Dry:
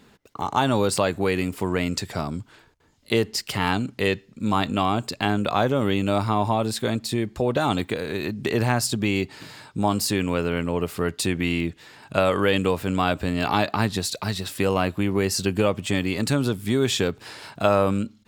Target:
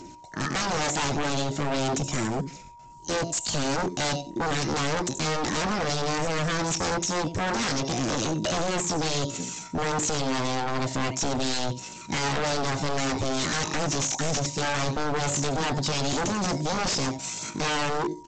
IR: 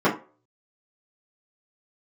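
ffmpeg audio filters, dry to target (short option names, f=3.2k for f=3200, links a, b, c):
-filter_complex "[0:a]bass=f=250:g=13,treble=f=4k:g=14,aphaser=in_gain=1:out_gain=1:delay=2.2:decay=0.42:speed=1.6:type=sinusoidal,alimiter=limit=-8dB:level=0:latency=1:release=89,aecho=1:1:84|168:0.178|0.0302,acrossover=split=5200[a][b];[b]acompressor=threshold=-35dB:ratio=4:attack=1:release=60[c];[a][c]amix=inputs=2:normalize=0,aemphasis=mode=production:type=75fm,asplit=2[d][e];[1:a]atrim=start_sample=2205,asetrate=52920,aresample=44100[f];[e][f]afir=irnorm=-1:irlink=0,volume=-26dB[g];[d][g]amix=inputs=2:normalize=0,asetrate=66075,aresample=44100,atempo=0.66742,aeval=exprs='val(0)+0.00708*sin(2*PI*950*n/s)':c=same,aresample=16000,aeval=exprs='0.119*(abs(mod(val(0)/0.119+3,4)-2)-1)':c=same,aresample=44100,volume=-3dB"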